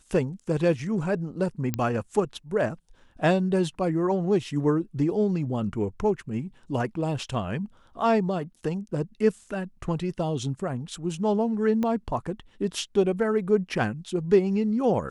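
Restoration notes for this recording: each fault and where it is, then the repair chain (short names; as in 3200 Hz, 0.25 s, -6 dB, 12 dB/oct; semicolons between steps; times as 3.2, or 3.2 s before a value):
1.74 pop -12 dBFS
11.83 pop -17 dBFS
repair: de-click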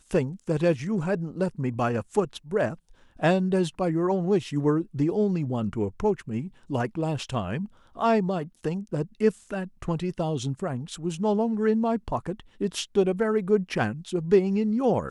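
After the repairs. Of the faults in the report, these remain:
11.83 pop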